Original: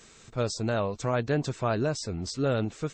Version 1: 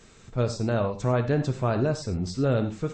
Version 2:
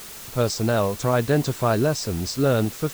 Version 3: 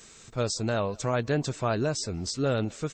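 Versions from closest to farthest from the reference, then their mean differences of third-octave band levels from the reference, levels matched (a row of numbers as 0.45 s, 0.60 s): 3, 1, 2; 1.5 dB, 4.0 dB, 7.0 dB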